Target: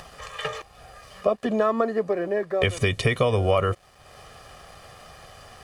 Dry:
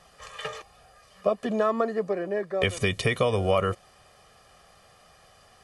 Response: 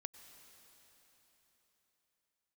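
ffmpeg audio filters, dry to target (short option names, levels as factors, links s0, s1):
-filter_complex "[0:a]bass=f=250:g=3,treble=f=4000:g=-3,asplit=2[s0][s1];[s1]acompressor=threshold=0.0316:ratio=6,volume=0.891[s2];[s0][s2]amix=inputs=2:normalize=0,equalizer=f=190:t=o:w=0.2:g=-7.5,acompressor=mode=upward:threshold=0.0158:ratio=2.5,aeval=exprs='sgn(val(0))*max(abs(val(0))-0.00141,0)':c=same"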